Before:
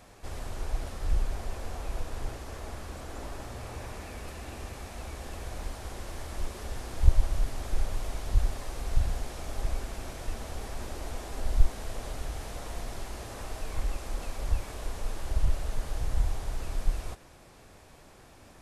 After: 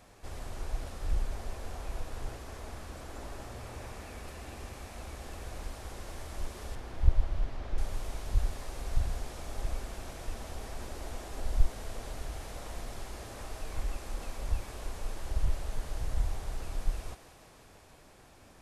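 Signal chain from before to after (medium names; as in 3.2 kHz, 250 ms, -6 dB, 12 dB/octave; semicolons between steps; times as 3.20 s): 6.75–7.78 s: distance through air 180 m; on a send: thinning echo 162 ms, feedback 80%, high-pass 210 Hz, level -13 dB; on the sum: trim -3.5 dB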